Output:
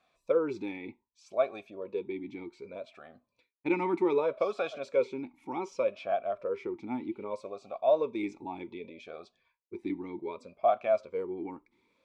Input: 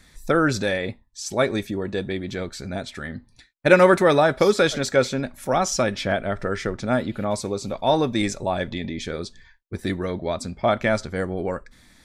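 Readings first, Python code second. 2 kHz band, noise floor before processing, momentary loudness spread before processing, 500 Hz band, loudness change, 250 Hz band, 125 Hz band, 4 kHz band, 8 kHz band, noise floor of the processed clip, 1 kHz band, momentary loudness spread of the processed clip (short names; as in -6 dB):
-18.0 dB, -57 dBFS, 14 LU, -8.5 dB, -9.5 dB, -11.0 dB, -22.5 dB, -21.5 dB, under -25 dB, -81 dBFS, -10.0 dB, 16 LU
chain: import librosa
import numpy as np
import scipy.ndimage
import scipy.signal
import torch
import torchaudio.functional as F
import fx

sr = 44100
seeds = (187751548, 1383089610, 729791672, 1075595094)

y = fx.vowel_sweep(x, sr, vowels='a-u', hz=0.65)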